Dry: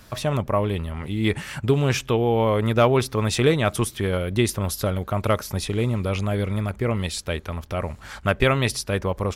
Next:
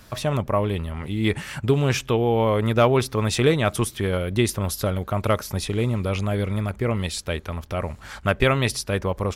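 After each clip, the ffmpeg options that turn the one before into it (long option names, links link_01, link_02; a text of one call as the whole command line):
ffmpeg -i in.wav -af anull out.wav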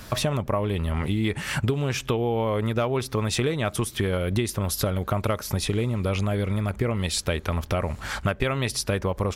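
ffmpeg -i in.wav -af "acompressor=threshold=-28dB:ratio=10,volume=7dB" out.wav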